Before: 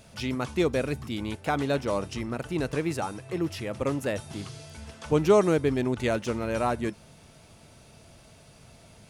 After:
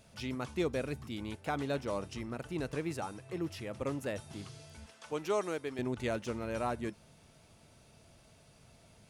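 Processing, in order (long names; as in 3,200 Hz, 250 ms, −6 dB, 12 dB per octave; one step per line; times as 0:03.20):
0:04.86–0:05.79: high-pass filter 670 Hz 6 dB per octave
level −8 dB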